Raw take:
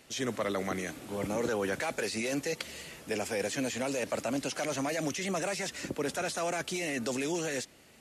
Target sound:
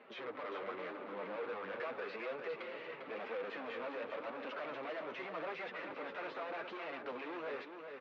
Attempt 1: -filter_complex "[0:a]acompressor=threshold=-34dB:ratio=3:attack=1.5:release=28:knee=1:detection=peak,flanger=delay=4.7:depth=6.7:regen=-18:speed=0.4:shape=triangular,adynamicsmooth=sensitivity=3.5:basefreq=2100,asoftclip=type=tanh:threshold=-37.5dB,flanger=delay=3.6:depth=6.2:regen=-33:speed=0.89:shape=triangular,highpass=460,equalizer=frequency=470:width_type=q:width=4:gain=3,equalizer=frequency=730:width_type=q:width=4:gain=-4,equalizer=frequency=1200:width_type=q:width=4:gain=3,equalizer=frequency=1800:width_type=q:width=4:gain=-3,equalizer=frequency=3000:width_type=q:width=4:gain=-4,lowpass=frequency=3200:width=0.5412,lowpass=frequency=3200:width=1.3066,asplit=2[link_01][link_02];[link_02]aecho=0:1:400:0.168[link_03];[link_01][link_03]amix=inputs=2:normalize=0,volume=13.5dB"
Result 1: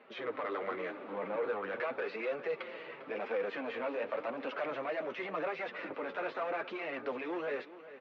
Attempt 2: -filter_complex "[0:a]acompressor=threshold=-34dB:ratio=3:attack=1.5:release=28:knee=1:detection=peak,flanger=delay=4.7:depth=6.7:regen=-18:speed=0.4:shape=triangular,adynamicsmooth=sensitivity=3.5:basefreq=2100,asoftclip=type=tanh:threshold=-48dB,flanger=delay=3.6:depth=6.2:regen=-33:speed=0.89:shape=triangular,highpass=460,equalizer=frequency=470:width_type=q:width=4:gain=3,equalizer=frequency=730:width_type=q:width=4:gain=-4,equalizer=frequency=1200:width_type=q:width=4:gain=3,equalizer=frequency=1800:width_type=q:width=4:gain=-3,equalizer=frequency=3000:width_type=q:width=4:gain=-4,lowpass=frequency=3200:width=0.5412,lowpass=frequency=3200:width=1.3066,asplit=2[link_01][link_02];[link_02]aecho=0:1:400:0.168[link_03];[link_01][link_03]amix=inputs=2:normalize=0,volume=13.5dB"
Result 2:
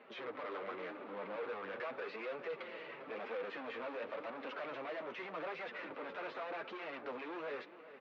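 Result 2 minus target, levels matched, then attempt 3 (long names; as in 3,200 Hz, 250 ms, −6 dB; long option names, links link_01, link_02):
echo-to-direct −8.5 dB
-filter_complex "[0:a]acompressor=threshold=-34dB:ratio=3:attack=1.5:release=28:knee=1:detection=peak,flanger=delay=4.7:depth=6.7:regen=-18:speed=0.4:shape=triangular,adynamicsmooth=sensitivity=3.5:basefreq=2100,asoftclip=type=tanh:threshold=-48dB,flanger=delay=3.6:depth=6.2:regen=-33:speed=0.89:shape=triangular,highpass=460,equalizer=frequency=470:width_type=q:width=4:gain=3,equalizer=frequency=730:width_type=q:width=4:gain=-4,equalizer=frequency=1200:width_type=q:width=4:gain=3,equalizer=frequency=1800:width_type=q:width=4:gain=-3,equalizer=frequency=3000:width_type=q:width=4:gain=-4,lowpass=frequency=3200:width=0.5412,lowpass=frequency=3200:width=1.3066,asplit=2[link_01][link_02];[link_02]aecho=0:1:400:0.447[link_03];[link_01][link_03]amix=inputs=2:normalize=0,volume=13.5dB"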